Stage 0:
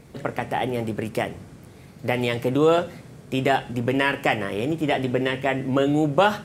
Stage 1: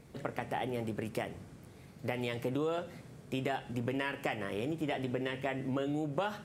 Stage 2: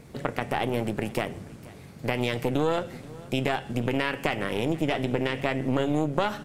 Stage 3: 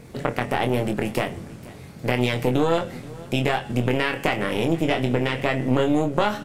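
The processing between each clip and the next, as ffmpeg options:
-af "acompressor=threshold=0.0708:ratio=4,volume=0.398"
-filter_complex "[0:a]asplit=2[s0][s1];[s1]alimiter=level_in=1.12:limit=0.0631:level=0:latency=1:release=25,volume=0.891,volume=1.41[s2];[s0][s2]amix=inputs=2:normalize=0,aeval=exprs='0.224*(cos(1*acos(clip(val(0)/0.224,-1,1)))-cos(1*PI/2))+0.112*(cos(2*acos(clip(val(0)/0.224,-1,1)))-cos(2*PI/2))':c=same,aecho=1:1:480:0.0891"
-filter_complex "[0:a]asplit=2[s0][s1];[s1]adelay=24,volume=0.501[s2];[s0][s2]amix=inputs=2:normalize=0,volume=1.5"

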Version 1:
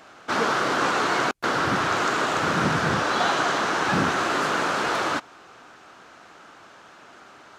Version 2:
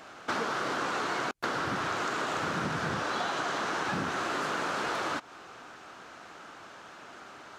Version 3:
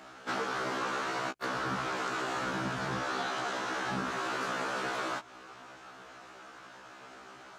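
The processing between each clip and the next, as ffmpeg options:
-af "acompressor=threshold=0.0355:ratio=6"
-af "afftfilt=real='re*1.73*eq(mod(b,3),0)':imag='im*1.73*eq(mod(b,3),0)':win_size=2048:overlap=0.75"

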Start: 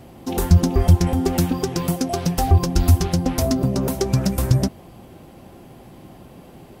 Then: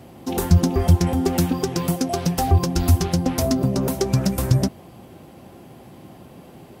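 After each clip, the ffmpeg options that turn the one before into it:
-af "highpass=73"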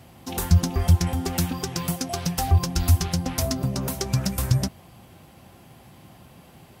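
-af "equalizer=f=360:w=0.62:g=-10.5"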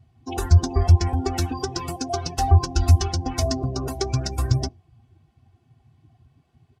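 -af "afftdn=nr=22:nf=-36,lowpass=7000,aecho=1:1:2.7:0.95"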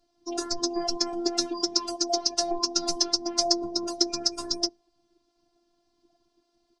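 -af "aexciter=amount=4.6:drive=3.9:freq=4200,highpass=230,equalizer=f=260:t=q:w=4:g=5,equalizer=f=1100:t=q:w=4:g=-3,equalizer=f=2100:t=q:w=4:g=-3,lowpass=f=6400:w=0.5412,lowpass=f=6400:w=1.3066,afftfilt=real='hypot(re,im)*cos(PI*b)':imag='0':win_size=512:overlap=0.75"

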